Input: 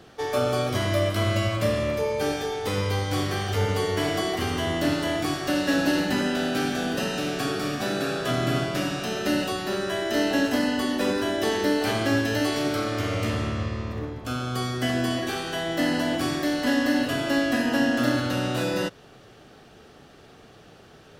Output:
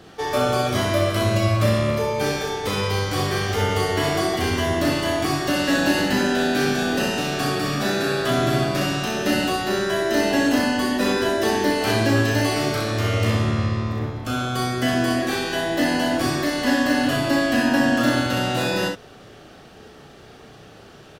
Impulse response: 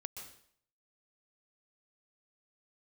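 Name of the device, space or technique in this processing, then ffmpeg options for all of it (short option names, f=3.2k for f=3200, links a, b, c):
slapback doubling: -filter_complex "[0:a]asplit=3[a][b][c];[b]adelay=35,volume=-4.5dB[d];[c]adelay=63,volume=-5dB[e];[a][d][e]amix=inputs=3:normalize=0,volume=3dB"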